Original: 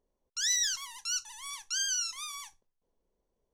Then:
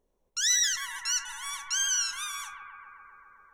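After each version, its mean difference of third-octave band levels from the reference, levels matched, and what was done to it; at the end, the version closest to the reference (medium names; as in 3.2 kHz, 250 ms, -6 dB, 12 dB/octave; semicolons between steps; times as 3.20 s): 3.5 dB: band-stop 4.7 kHz, Q 6; on a send: bucket-brigade echo 131 ms, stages 2048, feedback 81%, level -5.5 dB; on the sum: trim +4.5 dB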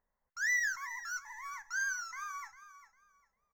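7.5 dB: FFT filter 210 Hz 0 dB, 340 Hz -12 dB, 810 Hz +6 dB, 2 kHz +15 dB, 2.9 kHz -26 dB, 6.5 kHz -5 dB, 9.5 kHz -25 dB, 15 kHz +6 dB; on a send: feedback delay 401 ms, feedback 23%, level -14 dB; on the sum: trim -5 dB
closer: first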